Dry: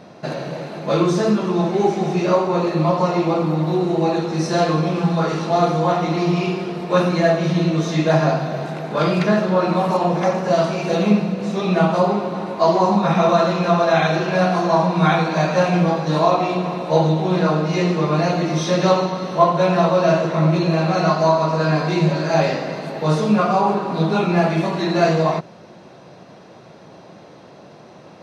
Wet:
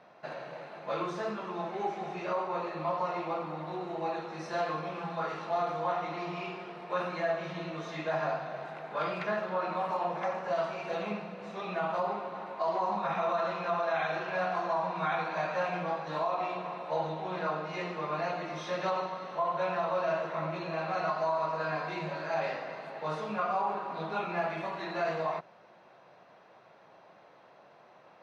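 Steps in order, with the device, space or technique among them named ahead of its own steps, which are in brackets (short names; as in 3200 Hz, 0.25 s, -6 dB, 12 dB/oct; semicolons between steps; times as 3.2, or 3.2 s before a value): DJ mixer with the lows and highs turned down (three-band isolator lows -15 dB, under 580 Hz, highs -14 dB, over 3000 Hz; limiter -12.5 dBFS, peak gain reduction 8 dB); gain -9 dB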